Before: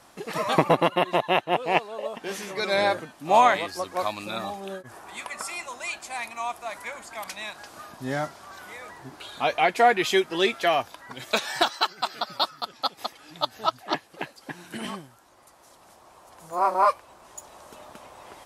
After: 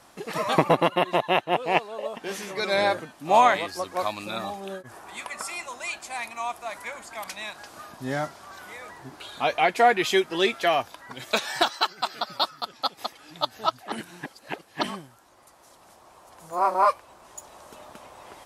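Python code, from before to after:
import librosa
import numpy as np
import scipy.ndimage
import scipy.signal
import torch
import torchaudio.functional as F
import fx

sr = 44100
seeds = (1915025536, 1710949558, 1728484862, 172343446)

y = fx.edit(x, sr, fx.reverse_span(start_s=13.92, length_s=0.91), tone=tone)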